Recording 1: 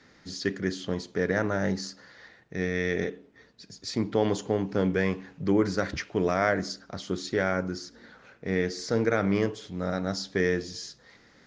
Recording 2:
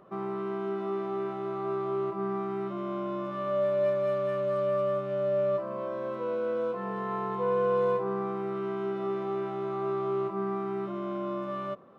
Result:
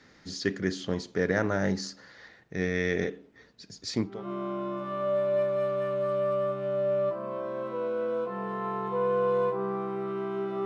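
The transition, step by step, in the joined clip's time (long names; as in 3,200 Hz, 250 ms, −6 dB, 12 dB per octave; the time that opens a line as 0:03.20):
recording 1
0:04.14: continue with recording 2 from 0:02.61, crossfade 0.30 s quadratic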